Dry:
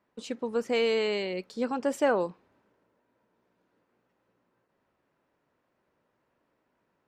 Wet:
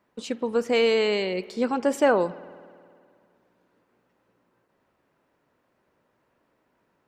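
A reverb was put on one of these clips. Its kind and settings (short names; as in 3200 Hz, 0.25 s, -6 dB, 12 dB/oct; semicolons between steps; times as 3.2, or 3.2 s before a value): spring tank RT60 2.2 s, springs 52 ms, chirp 40 ms, DRR 18 dB; gain +5 dB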